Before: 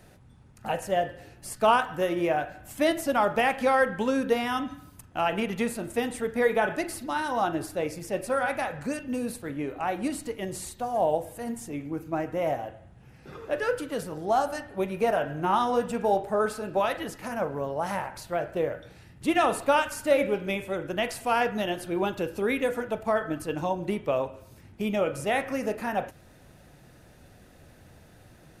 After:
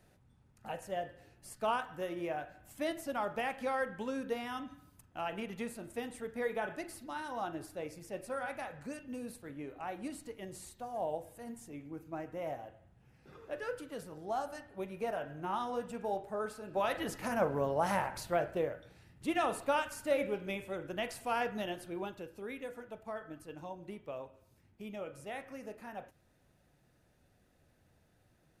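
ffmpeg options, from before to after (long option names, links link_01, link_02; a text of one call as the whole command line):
ffmpeg -i in.wav -af "volume=-1.5dB,afade=type=in:start_time=16.66:duration=0.5:silence=0.298538,afade=type=out:start_time=18.27:duration=0.48:silence=0.421697,afade=type=out:start_time=21.64:duration=0.63:silence=0.421697" out.wav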